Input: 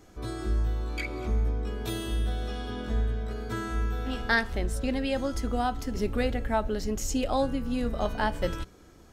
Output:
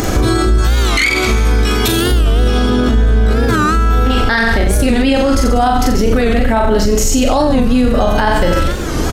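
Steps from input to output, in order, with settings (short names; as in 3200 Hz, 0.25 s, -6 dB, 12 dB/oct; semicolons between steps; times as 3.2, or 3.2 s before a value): 0.58–1.88 tilt shelf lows -8.5 dB, about 1200 Hz; upward compressor, threshold -30 dBFS; reverse bouncing-ball echo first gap 40 ms, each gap 1.1×, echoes 5; maximiser +28.5 dB; record warp 45 rpm, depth 160 cents; gain -3.5 dB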